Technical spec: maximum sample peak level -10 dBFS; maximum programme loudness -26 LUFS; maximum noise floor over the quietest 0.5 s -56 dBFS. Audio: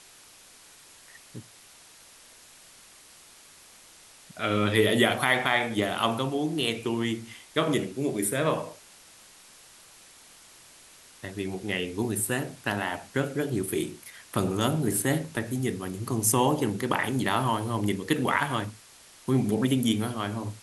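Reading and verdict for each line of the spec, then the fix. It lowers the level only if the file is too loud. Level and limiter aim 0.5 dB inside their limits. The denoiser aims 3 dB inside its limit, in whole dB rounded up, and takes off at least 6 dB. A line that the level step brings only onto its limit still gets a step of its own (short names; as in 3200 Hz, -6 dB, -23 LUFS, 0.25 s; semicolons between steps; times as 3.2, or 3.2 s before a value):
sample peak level -7.5 dBFS: fail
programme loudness -27.0 LUFS: OK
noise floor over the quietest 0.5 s -53 dBFS: fail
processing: denoiser 6 dB, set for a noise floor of -53 dBFS; limiter -10.5 dBFS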